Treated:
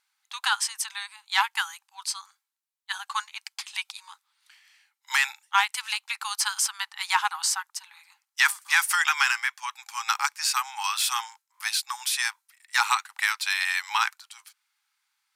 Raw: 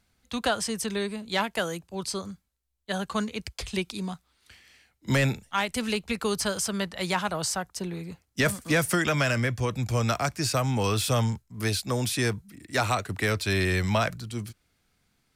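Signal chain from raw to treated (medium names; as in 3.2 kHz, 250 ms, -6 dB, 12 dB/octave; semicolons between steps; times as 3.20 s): brick-wall FIR high-pass 780 Hz; short-mantissa float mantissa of 8-bit; upward expansion 1.5:1, over -43 dBFS; trim +7 dB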